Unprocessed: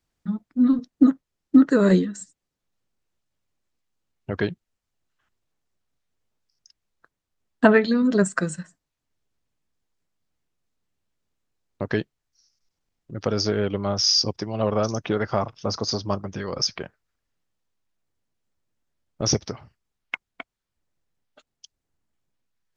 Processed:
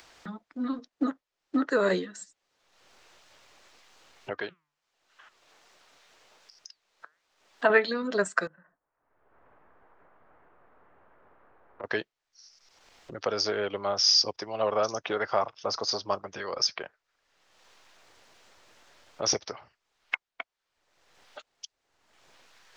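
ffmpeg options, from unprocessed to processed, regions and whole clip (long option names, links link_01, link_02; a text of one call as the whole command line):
ffmpeg -i in.wav -filter_complex "[0:a]asettb=1/sr,asplit=3[link_01][link_02][link_03];[link_01]atrim=end=4.334[link_04];[link_02]atrim=start=4.33:end=7.7,asetpts=PTS-STARTPTS,afade=type=in:duration=0.004:curve=qsin,afade=type=out:start_time=3.366:duration=0.004:curve=qsin,flanger=delay=3.2:depth=3.7:regen=89:speed=1.3:shape=sinusoidal,lowshelf=frequency=86:gain=-10.5[link_05];[link_03]atrim=start=7.696[link_06];[link_04][link_05]acrossfade=duration=0.004:curve1=hsin:curve2=qsin[link_07];[link_07][link_06]acrossfade=duration=0.004:curve1=qsin:curve2=hsin,asettb=1/sr,asplit=3[link_08][link_09][link_10];[link_08]atrim=end=8.474[link_11];[link_09]atrim=start=8.47:end=11.84,asetpts=PTS-STARTPTS,afade=type=in:duration=0.004:curve=qsin,afade=type=out:start_time=3.366:duration=0.004:curve=qsin,lowpass=frequency=1500:width=0.5412,lowpass=frequency=1500:width=1.3066,acompressor=threshold=-43dB:ratio=4:attack=3.2:release=140:knee=1:detection=peak[link_12];[link_10]atrim=start=11.836[link_13];[link_11][link_12]acrossfade=duration=0.004:curve1=hsin:curve2=qsin[link_14];[link_14][link_13]acrossfade=duration=0.004:curve1=qsin:curve2=hsin,acrossover=split=430 6700:gain=0.112 1 0.158[link_15][link_16][link_17];[link_15][link_16][link_17]amix=inputs=3:normalize=0,acompressor=mode=upward:threshold=-34dB:ratio=2.5" out.wav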